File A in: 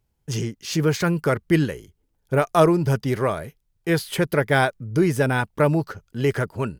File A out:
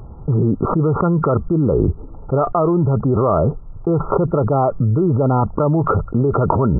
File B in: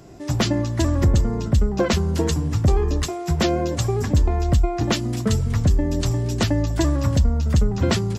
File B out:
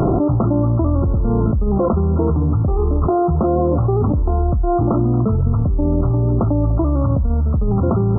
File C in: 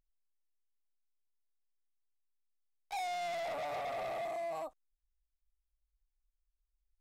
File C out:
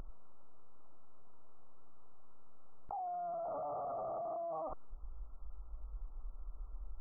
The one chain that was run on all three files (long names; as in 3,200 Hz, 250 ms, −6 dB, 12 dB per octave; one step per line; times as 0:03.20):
linear-phase brick-wall low-pass 1,400 Hz
envelope flattener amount 100%
level −3 dB